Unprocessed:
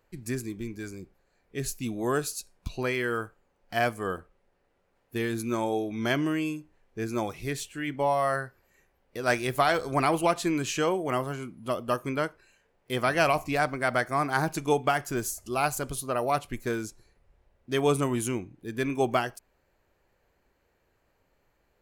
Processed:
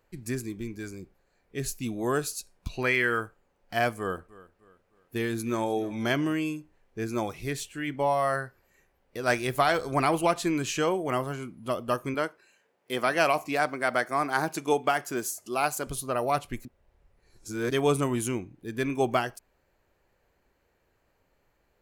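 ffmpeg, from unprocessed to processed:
-filter_complex "[0:a]asettb=1/sr,asplit=3[s0][s1][s2];[s0]atrim=end=2.734[s3];[s1]atrim=start=2.73:end=3.2,asetpts=PTS-STARTPTS,afade=t=in:d=0.004:c=qsin,afade=t=out:st=0.466:d=0.004:c=qsin,equalizer=f=2000:t=o:w=1.1:g=8[s4];[s2]atrim=start=3.196[s5];[s3][s4]acrossfade=d=0.004:c1=hsin:c2=qsin[s6];[s6][s5]acrossfade=d=0.004:c1=qsin:c2=hsin,asettb=1/sr,asplit=3[s7][s8][s9];[s7]atrim=end=3.984[s10];[s8]atrim=start=3.98:end=6.33,asetpts=PTS-STARTPTS,afade=t=in:d=0.004:c=qsin,afade=t=out:st=2.346:d=0.004:c=qsin,aecho=1:1:305|610|915:0.106|0.0413|0.0161,atrim=end_sample=103635[s11];[s9]atrim=start=6.326[s12];[s10][s11]acrossfade=d=0.004:c1=hsin:c2=qsin[s13];[s13][s12]acrossfade=d=0.004:c1=qsin:c2=hsin,asettb=1/sr,asplit=3[s14][s15][s16];[s14]atrim=end=12.144[s17];[s15]atrim=start=12.14:end=15.87,asetpts=PTS-STARTPTS,afade=t=in:d=0.004:c=qsin,afade=t=out:st=3.726:d=0.004:c=qsin,highpass=210[s18];[s16]atrim=start=15.866[s19];[s17][s18]acrossfade=d=0.004:c1=hsin:c2=qsin[s20];[s20][s19]acrossfade=d=0.004:c1=qsin:c2=hsin,asplit=3[s21][s22][s23];[s21]atrim=end=16.652[s24];[s22]atrim=start=16.648:end=17.712,asetpts=PTS-STARTPTS,areverse[s25];[s23]atrim=start=17.708[s26];[s24][s25]acrossfade=d=0.004:c1=hsin:c2=hsin[s27];[s27][s26]acrossfade=d=0.004:c1=hsin:c2=hsin"

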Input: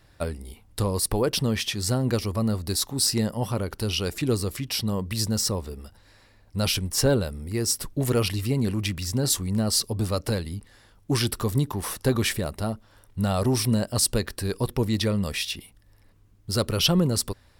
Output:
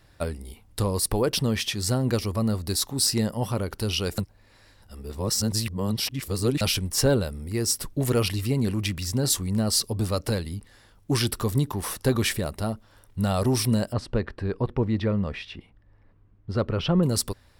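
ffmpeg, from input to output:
-filter_complex "[0:a]asettb=1/sr,asplit=3[s0][s1][s2];[s0]atrim=end=13.934[s3];[s1]atrim=start=13.93:end=17.03,asetpts=PTS-STARTPTS,afade=t=in:d=0.004:c=qsin,afade=t=out:st=3.096:d=0.004:c=qsin,lowpass=1900[s4];[s2]atrim=start=17.026[s5];[s3][s4]acrossfade=d=0.004:c1=hsin:c2=qsin[s6];[s6][s5]acrossfade=d=0.004:c1=qsin:c2=hsin,asplit=3[s7][s8][s9];[s7]atrim=end=4.182[s10];[s8]atrim=start=4.178:end=6.612,asetpts=PTS-STARTPTS,areverse[s11];[s9]atrim=start=6.608[s12];[s10][s11]acrossfade=d=0.004:c1=hsin:c2=hsin[s13];[s13][s12]acrossfade=d=0.004:c1=hsin:c2=hsin"

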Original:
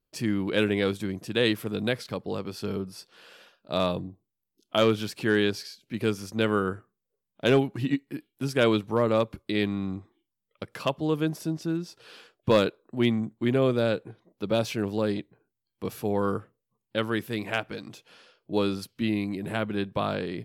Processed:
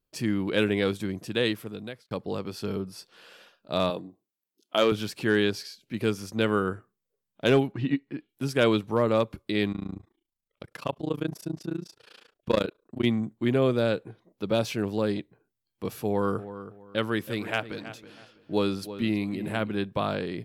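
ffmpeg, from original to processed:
-filter_complex "[0:a]asettb=1/sr,asplit=3[s0][s1][s2];[s0]atrim=end=3.904[s3];[s1]atrim=start=3.9:end=4.92,asetpts=PTS-STARTPTS,afade=t=in:d=0.004:c=qsin,afade=t=out:st=1.016:d=0.004:c=qsin,highpass=260[s4];[s2]atrim=start=4.916[s5];[s3][s4]acrossfade=d=0.004:c1=hsin:c2=qsin[s6];[s6][s5]acrossfade=d=0.004:c1=qsin:c2=hsin,asettb=1/sr,asplit=3[s7][s8][s9];[s7]atrim=end=7.724[s10];[s8]atrim=start=7.72:end=8.29,asetpts=PTS-STARTPTS,afade=t=in:d=0.004:c=qsin,afade=t=out:st=0.566:d=0.004:c=qsin,lowpass=3500[s11];[s9]atrim=start=8.286[s12];[s10][s11]acrossfade=d=0.004:c1=hsin:c2=qsin[s13];[s13][s12]acrossfade=d=0.004:c1=qsin:c2=hsin,asplit=3[s14][s15][s16];[s14]afade=t=out:st=9.71:d=0.02[s17];[s15]tremolo=f=28:d=0.974,afade=t=in:st=9.71:d=0.02,afade=t=out:st=13.04:d=0.02[s18];[s16]afade=t=in:st=13.04:d=0.02[s19];[s17][s18][s19]amix=inputs=3:normalize=0,asettb=1/sr,asplit=3[s20][s21][s22];[s20]atrim=end=16.064[s23];[s21]atrim=start=16.06:end=19.69,asetpts=PTS-STARTPTS,afade=t=in:d=0.004:c=qsin,afade=t=out:st=3.626:d=0.004:c=qsin,asplit=2[s24][s25];[s25]adelay=324,lowpass=f=3100:p=1,volume=0.224,asplit=2[s26][s27];[s27]adelay=324,lowpass=f=3100:p=1,volume=0.28,asplit=2[s28][s29];[s29]adelay=324,lowpass=f=3100:p=1,volume=0.28[s30];[s24][s26][s28][s30]amix=inputs=4:normalize=0,atrim=end_sample=160083[s31];[s22]atrim=start=19.686[s32];[s23][s31]acrossfade=d=0.004:c1=hsin:c2=qsin[s33];[s33][s32]acrossfade=d=0.004:c1=qsin:c2=hsin,asplit=2[s34][s35];[s34]atrim=end=2.11,asetpts=PTS-STARTPTS,afade=t=out:st=1.26:d=0.85[s36];[s35]atrim=start=2.11,asetpts=PTS-STARTPTS,afade=t=in:d=0.004:c=hsin[s37];[s36][s37]concat=n=2:v=0:a=1"

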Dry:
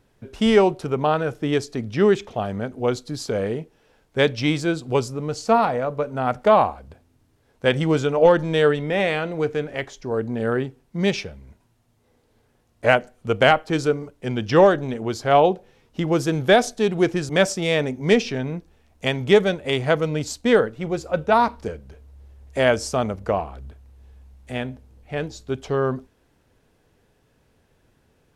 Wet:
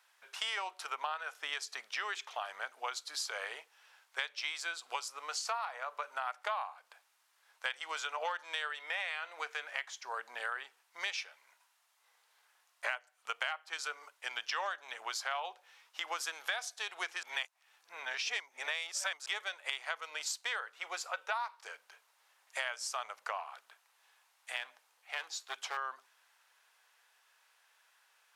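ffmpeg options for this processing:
-filter_complex "[0:a]asettb=1/sr,asplit=3[s0][s1][s2];[s0]atrim=end=24.564[s3];[s1]atrim=start=24.56:end=25.77,asetpts=PTS-STARTPTS,afade=t=in:d=0.004:c=qsin,afade=t=out:st=1.206:d=0.004:c=qsin,aeval=exprs='clip(val(0),-1,0.0376)':c=same[s4];[s2]atrim=start=25.766[s5];[s3][s4]acrossfade=d=0.004:c1=hsin:c2=qsin[s6];[s6][s5]acrossfade=d=0.004:c1=qsin:c2=hsin,asplit=3[s7][s8][s9];[s7]atrim=end=17.232[s10];[s8]atrim=start=17.228:end=19.262,asetpts=PTS-STARTPTS,areverse[s11];[s9]atrim=start=19.258[s12];[s10][s11]acrossfade=d=0.004:c1=hsin:c2=hsin[s13];[s13][s12]acrossfade=d=0.004:c1=hsin:c2=hsin,highpass=f=970:w=0.5412,highpass=f=970:w=1.3066,acompressor=threshold=0.0158:ratio=6,volume=1.19"

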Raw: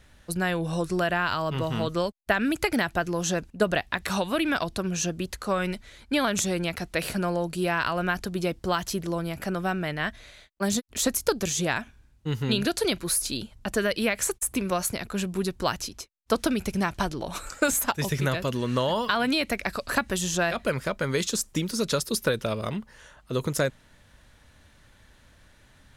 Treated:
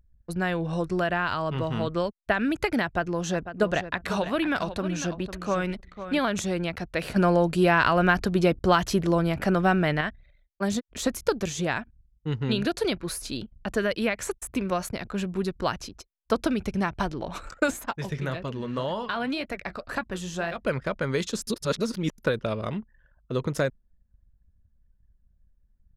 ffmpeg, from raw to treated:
-filter_complex "[0:a]asettb=1/sr,asplit=3[s0][s1][s2];[s0]atrim=end=2.844[s3];[s1]atrim=start=2.84:end=6.19,asetpts=PTS-STARTPTS,afade=t=in:d=0.004:c=qsin,afade=t=out:st=3.346:d=0.004:c=qsin,aecho=1:1:500|1000:0.282|0.0451,atrim=end_sample=147735[s4];[s2]atrim=start=6.186[s5];[s3][s4]acrossfade=d=0.004:c1=hsin:c2=qsin[s6];[s6][s5]acrossfade=d=0.004:c1=qsin:c2=hsin,asettb=1/sr,asplit=3[s7][s8][s9];[s7]atrim=end=7.164[s10];[s8]atrim=start=7.16:end=10.01,asetpts=PTS-STARTPTS,afade=t=in:d=0.004:c=qsin,afade=t=out:st=2.846:d=0.004:c=qsin,acontrast=69[s11];[s9]atrim=start=10.006[s12];[s10][s11]acrossfade=d=0.004:c1=hsin:c2=qsin[s13];[s13][s12]acrossfade=d=0.004:c1=qsin:c2=hsin,asplit=3[s14][s15][s16];[s14]afade=t=out:st=17.7:d=0.02[s17];[s15]flanger=delay=5.7:depth=7.3:regen=-64:speed=1.9:shape=sinusoidal,afade=t=in:st=17.7:d=0.02,afade=t=out:st=20.63:d=0.02[s18];[s16]afade=t=in:st=20.63:d=0.02[s19];[s17][s18][s19]amix=inputs=3:normalize=0,asplit=3[s20][s21][s22];[s20]atrim=end=21.472[s23];[s21]atrim=start=21.468:end=22.182,asetpts=PTS-STARTPTS,areverse[s24];[s22]atrim=start=22.178[s25];[s23][s24]acrossfade=d=0.004:c1=hsin:c2=hsin[s26];[s26][s25]acrossfade=d=0.004:c1=hsin:c2=hsin,lowpass=f=2900:p=1,anlmdn=0.0631"

